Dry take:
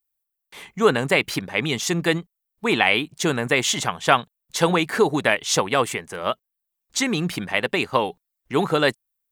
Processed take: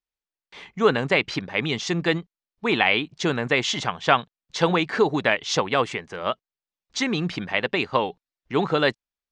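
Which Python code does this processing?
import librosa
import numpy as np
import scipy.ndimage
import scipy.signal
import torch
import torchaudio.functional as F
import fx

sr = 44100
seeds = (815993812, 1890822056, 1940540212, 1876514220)

y = scipy.signal.sosfilt(scipy.signal.butter(4, 5600.0, 'lowpass', fs=sr, output='sos'), x)
y = y * 10.0 ** (-1.5 / 20.0)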